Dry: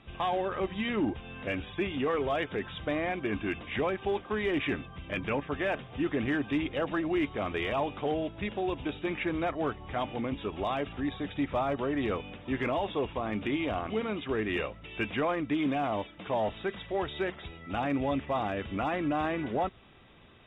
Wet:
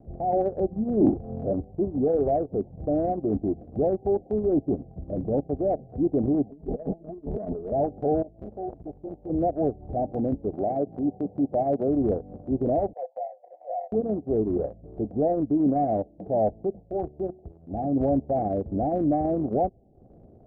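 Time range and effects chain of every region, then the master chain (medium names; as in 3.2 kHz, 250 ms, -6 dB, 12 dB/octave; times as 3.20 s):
0.97–1.53 s: companding laws mixed up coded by mu + doubling 36 ms -2.5 dB
6.50–7.72 s: compressor with a negative ratio -41 dBFS + comb 4.7 ms, depth 99% + loudspeaker Doppler distortion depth 0.57 ms
8.22–9.30 s: peaking EQ 240 Hz -8.5 dB 2.7 oct + transformer saturation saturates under 1.1 kHz
10.53–11.88 s: block-companded coder 3-bit + high-pass 140 Hz + upward compressor, threshold -34 dBFS
12.93–13.92 s: rippled Chebyshev high-pass 500 Hz, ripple 9 dB + three bands compressed up and down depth 40%
16.80–17.96 s: companding laws mixed up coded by A + dynamic bell 510 Hz, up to -6 dB, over -46 dBFS, Q 2.7 + de-hum 123.6 Hz, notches 6
whole clip: steep low-pass 770 Hz 96 dB/octave; transient shaper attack -3 dB, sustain -8 dB; trim +8 dB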